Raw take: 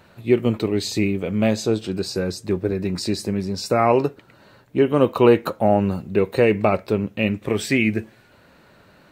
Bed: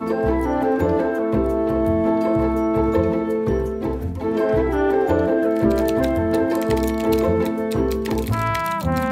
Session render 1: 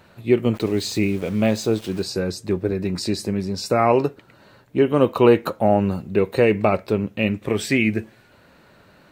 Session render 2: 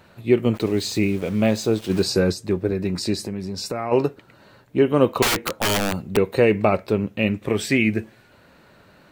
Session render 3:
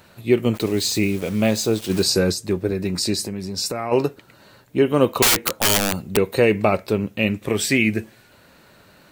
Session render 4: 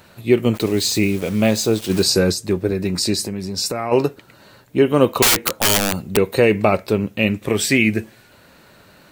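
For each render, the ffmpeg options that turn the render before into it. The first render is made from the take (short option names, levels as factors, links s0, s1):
-filter_complex "[0:a]asplit=3[s0][s1][s2];[s0]afade=t=out:st=0.54:d=0.02[s3];[s1]aeval=exprs='val(0)*gte(abs(val(0)),0.015)':c=same,afade=t=in:st=0.54:d=0.02,afade=t=out:st=2.02:d=0.02[s4];[s2]afade=t=in:st=2.02:d=0.02[s5];[s3][s4][s5]amix=inputs=3:normalize=0"
-filter_complex "[0:a]asplit=3[s0][s1][s2];[s0]afade=t=out:st=1.89:d=0.02[s3];[s1]acontrast=32,afade=t=in:st=1.89:d=0.02,afade=t=out:st=2.32:d=0.02[s4];[s2]afade=t=in:st=2.32:d=0.02[s5];[s3][s4][s5]amix=inputs=3:normalize=0,asplit=3[s6][s7][s8];[s6]afade=t=out:st=3.21:d=0.02[s9];[s7]acompressor=threshold=0.0562:ratio=3:attack=3.2:release=140:knee=1:detection=peak,afade=t=in:st=3.21:d=0.02,afade=t=out:st=3.91:d=0.02[s10];[s8]afade=t=in:st=3.91:d=0.02[s11];[s9][s10][s11]amix=inputs=3:normalize=0,asettb=1/sr,asplit=3[s12][s13][s14];[s12]atrim=end=5.224[s15];[s13]atrim=start=5.22:end=6.17,asetpts=PTS-STARTPTS,afade=t=in:d=0.004:c=qsin,afade=t=out:st=0.946:d=0.004:c=qsin,aeval=exprs='(mod(5.62*val(0)+1,2)-1)/5.62':c=same[s16];[s14]atrim=start=6.166[s17];[s15][s16]acrossfade=d=0.004:c1=hsin:c2=qsin[s18];[s18][s17]acrossfade=d=0.004:c1=qsin:c2=hsin"
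-af "highshelf=f=4300:g=10"
-af "volume=1.33,alimiter=limit=0.794:level=0:latency=1"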